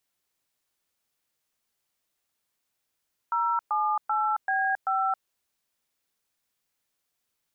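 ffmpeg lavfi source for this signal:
-f lavfi -i "aevalsrc='0.0531*clip(min(mod(t,0.387),0.271-mod(t,0.387))/0.002,0,1)*(eq(floor(t/0.387),0)*(sin(2*PI*941*mod(t,0.387))+sin(2*PI*1336*mod(t,0.387)))+eq(floor(t/0.387),1)*(sin(2*PI*852*mod(t,0.387))+sin(2*PI*1209*mod(t,0.387)))+eq(floor(t/0.387),2)*(sin(2*PI*852*mod(t,0.387))+sin(2*PI*1336*mod(t,0.387)))+eq(floor(t/0.387),3)*(sin(2*PI*770*mod(t,0.387))+sin(2*PI*1633*mod(t,0.387)))+eq(floor(t/0.387),4)*(sin(2*PI*770*mod(t,0.387))+sin(2*PI*1336*mod(t,0.387))))':d=1.935:s=44100"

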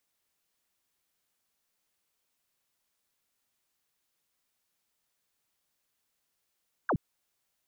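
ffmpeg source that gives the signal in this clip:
-f lavfi -i "aevalsrc='0.0631*clip(t/0.002,0,1)*clip((0.07-t)/0.002,0,1)*sin(2*PI*1700*0.07/log(110/1700)*(exp(log(110/1700)*t/0.07)-1))':d=0.07:s=44100"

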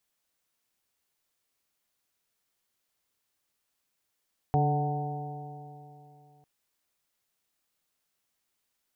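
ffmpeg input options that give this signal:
-f lavfi -i "aevalsrc='0.0708*pow(10,-3*t/3)*sin(2*PI*144.19*t)+0.0224*pow(10,-3*t/3)*sin(2*PI*289.49*t)+0.0299*pow(10,-3*t/3)*sin(2*PI*437.03*t)+0.0119*pow(10,-3*t/3)*sin(2*PI*587.86*t)+0.0596*pow(10,-3*t/3)*sin(2*PI*743.03*t)+0.0119*pow(10,-3*t/3)*sin(2*PI*903.53*t)':d=1.9:s=44100"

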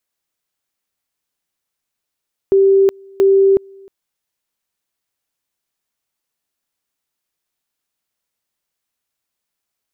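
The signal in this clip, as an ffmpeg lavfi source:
-f lavfi -i "aevalsrc='pow(10,(-7.5-29.5*gte(mod(t,0.68),0.37))/20)*sin(2*PI*390*t)':d=1.36:s=44100"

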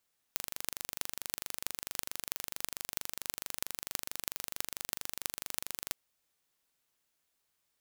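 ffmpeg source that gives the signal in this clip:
-f lavfi -i "aevalsrc='0.631*eq(mod(n,1800),0)*(0.5+0.5*eq(mod(n,14400),0))':d=5.58:s=44100"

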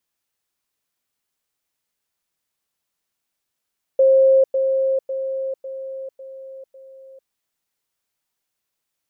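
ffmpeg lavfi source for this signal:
-f lavfi -i "aevalsrc='pow(10,(-10-6*floor(t/0.55))/20)*sin(2*PI*533*t)*clip(min(mod(t,0.55),0.45-mod(t,0.55))/0.005,0,1)':d=3.3:s=44100"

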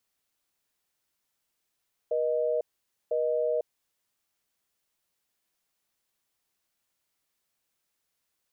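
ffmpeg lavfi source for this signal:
-f lavfi -i "aevalsrc='0.0447*(sin(2*PI*480*t)+sin(2*PI*620*t))*clip(min(mod(t,1),0.5-mod(t,1))/0.005,0,1)':d=1.62:s=44100"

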